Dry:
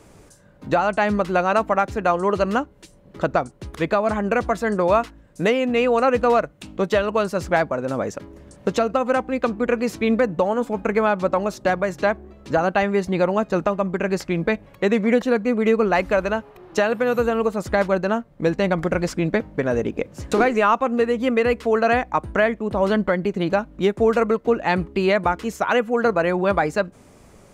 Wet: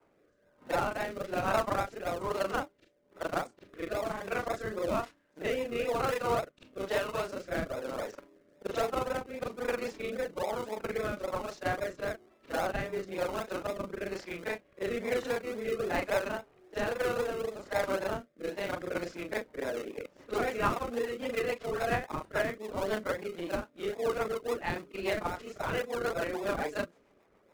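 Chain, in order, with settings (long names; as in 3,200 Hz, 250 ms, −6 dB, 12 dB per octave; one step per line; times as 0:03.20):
every overlapping window played backwards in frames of 93 ms
high-pass filter 480 Hz 12 dB per octave
low-pass that shuts in the quiet parts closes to 1,800 Hz, open at −20.5 dBFS
in parallel at −6 dB: sample-and-hold swept by an LFO 41×, swing 60% 3.7 Hz
on the sum: rotating-speaker cabinet horn 1.1 Hz, later 7 Hz, at 0:18.46
level −6 dB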